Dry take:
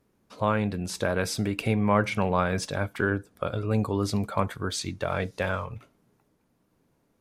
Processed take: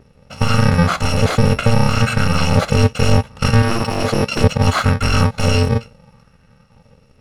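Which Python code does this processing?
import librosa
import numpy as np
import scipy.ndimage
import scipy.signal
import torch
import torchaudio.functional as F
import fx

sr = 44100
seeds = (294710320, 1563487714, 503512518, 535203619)

y = fx.bit_reversed(x, sr, seeds[0], block=128)
y = fx.highpass(y, sr, hz=270.0, slope=6, at=(3.62, 4.44))
y = fx.fold_sine(y, sr, drive_db=18, ceiling_db=-7.0)
y = fx.rider(y, sr, range_db=10, speed_s=0.5)
y = fx.spacing_loss(y, sr, db_at_10k=26)
y = fx.bell_lfo(y, sr, hz=0.7, low_hz=390.0, high_hz=1600.0, db=7)
y = F.gain(torch.from_numpy(y), 3.5).numpy()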